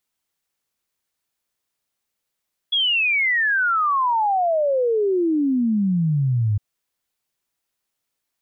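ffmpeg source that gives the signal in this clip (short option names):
-f lavfi -i "aevalsrc='0.15*clip(min(t,3.86-t)/0.01,0,1)*sin(2*PI*3400*3.86/log(100/3400)*(exp(log(100/3400)*t/3.86)-1))':d=3.86:s=44100"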